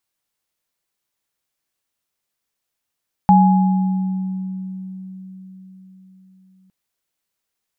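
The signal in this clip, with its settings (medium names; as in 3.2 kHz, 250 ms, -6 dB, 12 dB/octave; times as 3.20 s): sine partials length 3.41 s, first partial 188 Hz, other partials 834 Hz, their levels 0 dB, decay 4.81 s, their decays 1.54 s, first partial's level -9 dB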